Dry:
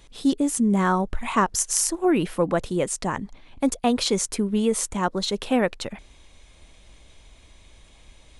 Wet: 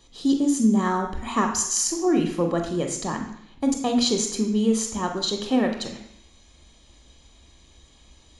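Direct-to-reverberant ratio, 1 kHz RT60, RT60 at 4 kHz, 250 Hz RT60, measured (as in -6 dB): 3.0 dB, 0.70 s, 0.70 s, 0.75 s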